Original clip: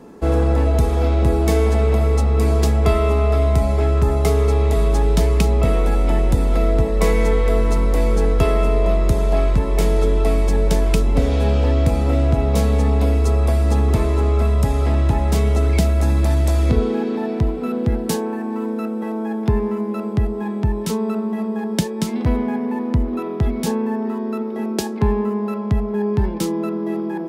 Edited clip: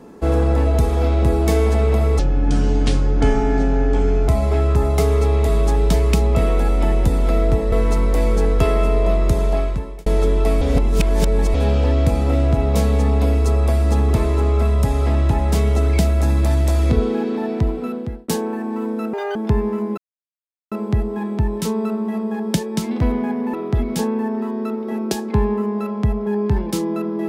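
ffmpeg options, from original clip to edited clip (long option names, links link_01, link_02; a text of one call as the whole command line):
ffmpeg -i in.wav -filter_complex "[0:a]asplit=12[link_01][link_02][link_03][link_04][link_05][link_06][link_07][link_08][link_09][link_10][link_11][link_12];[link_01]atrim=end=2.194[link_13];[link_02]atrim=start=2.19:end=3.55,asetpts=PTS-STARTPTS,asetrate=28665,aresample=44100[link_14];[link_03]atrim=start=3.546:end=6.992[link_15];[link_04]atrim=start=7.518:end=9.86,asetpts=PTS-STARTPTS,afade=type=out:start_time=1.722:duration=0.62[link_16];[link_05]atrim=start=9.86:end=10.412,asetpts=PTS-STARTPTS,afade=type=in:duration=0.004:curve=hsin[link_17];[link_06]atrim=start=10.408:end=11.342,asetpts=PTS-STARTPTS,areverse[link_18];[link_07]atrim=start=11.338:end=18.08,asetpts=PTS-STARTPTS,afade=type=out:start_time=6.222:duration=0.52[link_19];[link_08]atrim=start=18.08:end=18.934,asetpts=PTS-STARTPTS,afade=type=in:duration=0.004:curve=hsin[link_20];[link_09]atrim=start=18.93:end=19.34,asetpts=PTS-STARTPTS,asetrate=81144,aresample=44100[link_21];[link_10]atrim=start=19.336:end=19.96,asetpts=PTS-STARTPTS,afade=type=out:start_time=0.62:duration=0.004:curve=hsin,apad=pad_dur=0.74[link_22];[link_11]atrim=start=19.96:end=22.782,asetpts=PTS-STARTPTS,afade=type=in:duration=0.004:curve=hsin[link_23];[link_12]atrim=start=23.208[link_24];[link_13][link_14]acrossfade=duration=0.004:curve1=hsin:curve2=hsin[link_25];[link_25][link_15]acrossfade=duration=0.004:curve1=hsin:curve2=hsin[link_26];[link_16][link_17]concat=n=2:v=0:a=1[link_27];[link_26][link_27]acrossfade=duration=0.004:curve1=hsin:curve2=hsin[link_28];[link_28][link_18]acrossfade=duration=0.004:curve1=hsin:curve2=hsin[link_29];[link_19][link_20]concat=n=2:v=0:a=1[link_30];[link_29][link_30]acrossfade=duration=0.004:curve1=hsin:curve2=hsin[link_31];[link_31][link_21]acrossfade=duration=0.004:curve1=hsin:curve2=hsin[link_32];[link_22][link_23]concat=n=2:v=0:a=1[link_33];[link_32][link_33]acrossfade=duration=0.004:curve1=hsin:curve2=hsin[link_34];[link_34][link_24]acrossfade=duration=0.004:curve1=hsin:curve2=hsin" out.wav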